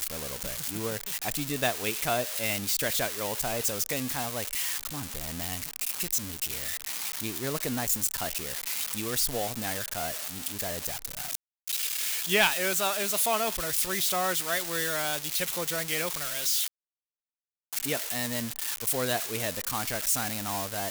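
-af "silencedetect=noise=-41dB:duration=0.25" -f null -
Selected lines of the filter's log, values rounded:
silence_start: 11.35
silence_end: 11.67 | silence_duration: 0.32
silence_start: 16.68
silence_end: 17.73 | silence_duration: 1.05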